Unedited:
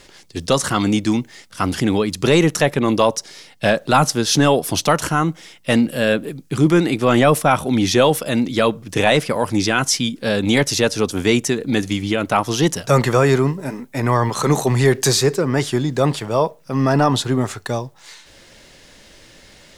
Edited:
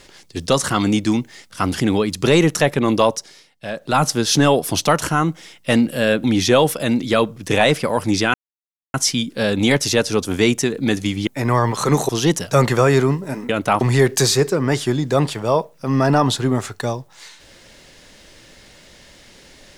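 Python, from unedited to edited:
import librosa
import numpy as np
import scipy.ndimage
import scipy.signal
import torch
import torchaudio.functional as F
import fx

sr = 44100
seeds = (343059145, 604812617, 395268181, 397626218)

y = fx.edit(x, sr, fx.fade_down_up(start_s=3.06, length_s=1.06, db=-13.5, fade_s=0.45),
    fx.cut(start_s=6.24, length_s=1.46),
    fx.insert_silence(at_s=9.8, length_s=0.6),
    fx.swap(start_s=12.13, length_s=0.32, other_s=13.85, other_length_s=0.82), tone=tone)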